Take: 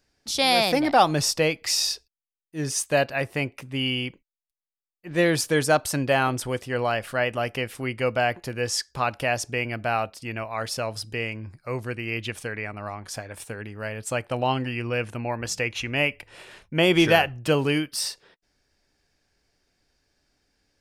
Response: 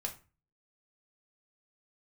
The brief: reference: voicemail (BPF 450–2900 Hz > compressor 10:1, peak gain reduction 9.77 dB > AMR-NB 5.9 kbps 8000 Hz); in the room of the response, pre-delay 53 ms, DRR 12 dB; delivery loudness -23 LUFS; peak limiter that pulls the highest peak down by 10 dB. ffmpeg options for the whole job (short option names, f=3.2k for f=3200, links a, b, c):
-filter_complex "[0:a]alimiter=limit=-15dB:level=0:latency=1,asplit=2[a][b];[1:a]atrim=start_sample=2205,adelay=53[c];[b][c]afir=irnorm=-1:irlink=0,volume=-12.5dB[d];[a][d]amix=inputs=2:normalize=0,highpass=450,lowpass=2.9k,acompressor=threshold=-29dB:ratio=10,volume=14dB" -ar 8000 -c:a libopencore_amrnb -b:a 5900